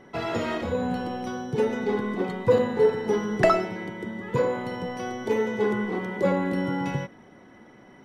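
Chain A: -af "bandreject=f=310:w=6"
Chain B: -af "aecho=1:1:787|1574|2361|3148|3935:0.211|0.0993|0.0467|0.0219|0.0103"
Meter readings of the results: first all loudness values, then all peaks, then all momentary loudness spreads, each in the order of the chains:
-26.5, -26.0 LUFS; -7.5, -7.5 dBFS; 10, 11 LU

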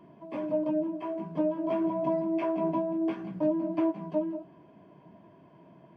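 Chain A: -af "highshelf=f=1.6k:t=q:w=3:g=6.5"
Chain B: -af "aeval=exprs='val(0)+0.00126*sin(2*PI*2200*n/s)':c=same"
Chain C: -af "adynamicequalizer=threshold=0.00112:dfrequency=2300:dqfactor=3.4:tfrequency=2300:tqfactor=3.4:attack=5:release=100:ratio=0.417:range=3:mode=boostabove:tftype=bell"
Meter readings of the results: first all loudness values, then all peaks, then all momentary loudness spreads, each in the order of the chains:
-31.0, -30.5, -30.5 LUFS; -18.0, -17.5, -17.5 dBFS; 7, 7, 7 LU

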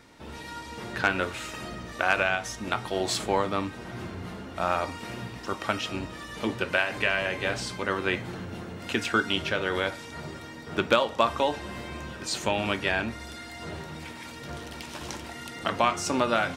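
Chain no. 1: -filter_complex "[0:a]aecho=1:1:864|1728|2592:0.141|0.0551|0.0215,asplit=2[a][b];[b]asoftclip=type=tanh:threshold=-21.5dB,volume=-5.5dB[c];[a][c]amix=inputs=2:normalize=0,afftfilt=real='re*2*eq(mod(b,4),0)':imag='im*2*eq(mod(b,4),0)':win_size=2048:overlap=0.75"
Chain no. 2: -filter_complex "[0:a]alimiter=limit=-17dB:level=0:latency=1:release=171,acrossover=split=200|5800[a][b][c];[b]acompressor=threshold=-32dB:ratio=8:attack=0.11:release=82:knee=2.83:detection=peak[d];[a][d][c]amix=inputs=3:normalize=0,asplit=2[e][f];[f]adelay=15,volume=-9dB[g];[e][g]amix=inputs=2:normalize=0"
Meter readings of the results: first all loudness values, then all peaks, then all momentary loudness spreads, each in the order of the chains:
-29.5, -37.5 LUFS; -9.5, -21.0 dBFS; 13, 5 LU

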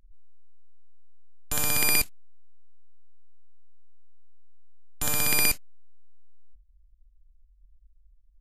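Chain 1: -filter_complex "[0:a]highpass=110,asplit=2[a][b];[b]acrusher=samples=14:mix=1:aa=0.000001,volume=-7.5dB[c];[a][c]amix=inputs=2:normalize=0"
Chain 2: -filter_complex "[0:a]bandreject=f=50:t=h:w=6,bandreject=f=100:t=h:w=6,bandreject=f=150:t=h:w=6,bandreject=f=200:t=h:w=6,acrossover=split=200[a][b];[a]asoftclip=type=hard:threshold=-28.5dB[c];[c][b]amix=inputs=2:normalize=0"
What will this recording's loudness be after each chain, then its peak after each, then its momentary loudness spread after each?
-24.0, -24.5 LUFS; -5.5, -5.0 dBFS; 11, 11 LU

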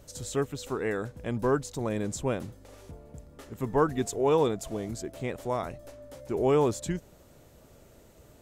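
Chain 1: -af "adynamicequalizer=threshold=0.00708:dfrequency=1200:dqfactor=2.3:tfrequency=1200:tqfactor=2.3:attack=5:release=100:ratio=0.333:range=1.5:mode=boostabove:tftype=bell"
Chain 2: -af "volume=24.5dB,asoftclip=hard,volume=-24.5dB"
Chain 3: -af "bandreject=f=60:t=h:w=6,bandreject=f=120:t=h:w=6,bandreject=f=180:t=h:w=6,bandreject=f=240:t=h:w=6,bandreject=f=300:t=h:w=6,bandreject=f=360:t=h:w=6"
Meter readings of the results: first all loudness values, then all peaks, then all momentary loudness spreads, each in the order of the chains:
-29.5, -32.5, -30.0 LUFS; -11.0, -24.5, -12.5 dBFS; 22, 19, 22 LU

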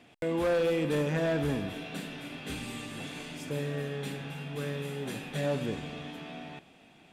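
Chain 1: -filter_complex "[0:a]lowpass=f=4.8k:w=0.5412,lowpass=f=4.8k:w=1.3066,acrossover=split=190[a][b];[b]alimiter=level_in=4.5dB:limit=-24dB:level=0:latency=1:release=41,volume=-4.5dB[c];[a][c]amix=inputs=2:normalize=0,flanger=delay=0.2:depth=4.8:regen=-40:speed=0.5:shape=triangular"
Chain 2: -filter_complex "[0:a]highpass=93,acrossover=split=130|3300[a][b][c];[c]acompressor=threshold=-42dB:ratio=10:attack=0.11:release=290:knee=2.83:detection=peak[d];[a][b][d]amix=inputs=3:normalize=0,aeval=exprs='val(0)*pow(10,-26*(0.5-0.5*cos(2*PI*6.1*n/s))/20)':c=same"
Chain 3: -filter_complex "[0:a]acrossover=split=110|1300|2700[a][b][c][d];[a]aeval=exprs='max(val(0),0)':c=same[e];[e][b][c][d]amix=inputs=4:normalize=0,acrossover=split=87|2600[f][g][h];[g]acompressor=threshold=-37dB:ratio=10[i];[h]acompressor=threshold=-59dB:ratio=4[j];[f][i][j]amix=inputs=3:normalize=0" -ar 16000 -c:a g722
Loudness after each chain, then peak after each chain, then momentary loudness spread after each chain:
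-40.5, -39.5, -41.5 LUFS; -26.5, -18.5, -27.5 dBFS; 8, 14, 4 LU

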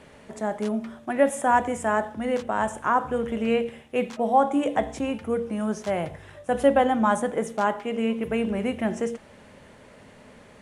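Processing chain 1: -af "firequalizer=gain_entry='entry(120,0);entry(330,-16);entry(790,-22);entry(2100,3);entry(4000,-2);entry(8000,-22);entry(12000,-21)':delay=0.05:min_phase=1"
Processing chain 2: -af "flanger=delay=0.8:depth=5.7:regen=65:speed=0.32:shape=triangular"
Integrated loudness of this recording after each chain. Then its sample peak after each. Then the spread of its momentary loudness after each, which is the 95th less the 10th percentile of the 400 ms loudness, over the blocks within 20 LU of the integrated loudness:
-36.0, -29.5 LUFS; -20.0, -10.5 dBFS; 21, 9 LU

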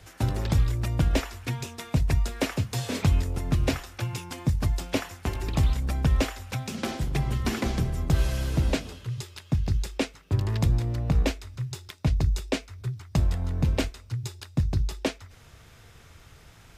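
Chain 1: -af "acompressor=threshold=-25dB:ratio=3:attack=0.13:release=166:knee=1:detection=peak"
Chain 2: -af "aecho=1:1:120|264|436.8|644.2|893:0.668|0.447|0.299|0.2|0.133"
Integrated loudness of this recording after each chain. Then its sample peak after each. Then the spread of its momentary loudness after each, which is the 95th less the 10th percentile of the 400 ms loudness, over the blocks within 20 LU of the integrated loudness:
-33.0, -25.5 LUFS; -20.5, -8.5 dBFS; 7, 7 LU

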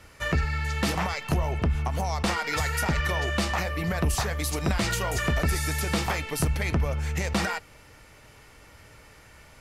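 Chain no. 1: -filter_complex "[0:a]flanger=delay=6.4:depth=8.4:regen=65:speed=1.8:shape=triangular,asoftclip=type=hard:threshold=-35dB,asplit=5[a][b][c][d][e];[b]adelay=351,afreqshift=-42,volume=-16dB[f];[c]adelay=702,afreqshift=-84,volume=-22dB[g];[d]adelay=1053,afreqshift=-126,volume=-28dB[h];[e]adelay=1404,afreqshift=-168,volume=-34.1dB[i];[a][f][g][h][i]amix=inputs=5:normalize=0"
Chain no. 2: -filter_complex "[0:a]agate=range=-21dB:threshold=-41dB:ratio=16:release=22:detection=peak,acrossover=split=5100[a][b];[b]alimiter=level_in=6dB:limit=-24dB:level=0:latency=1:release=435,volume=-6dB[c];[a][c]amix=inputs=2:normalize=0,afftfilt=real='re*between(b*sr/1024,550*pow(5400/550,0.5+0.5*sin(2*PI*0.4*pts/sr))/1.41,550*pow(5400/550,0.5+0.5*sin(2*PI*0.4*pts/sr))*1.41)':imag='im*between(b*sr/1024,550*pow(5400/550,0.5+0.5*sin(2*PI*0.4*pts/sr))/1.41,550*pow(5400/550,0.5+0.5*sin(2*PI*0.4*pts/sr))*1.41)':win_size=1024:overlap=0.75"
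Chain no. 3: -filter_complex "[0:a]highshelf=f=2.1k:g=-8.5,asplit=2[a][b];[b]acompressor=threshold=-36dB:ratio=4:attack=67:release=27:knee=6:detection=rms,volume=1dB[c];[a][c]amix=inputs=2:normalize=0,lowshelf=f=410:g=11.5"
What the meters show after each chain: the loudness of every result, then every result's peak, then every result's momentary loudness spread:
-37.0, -36.5, -16.0 LUFS; -30.5, -20.5, -3.5 dBFS; 19, 9, 4 LU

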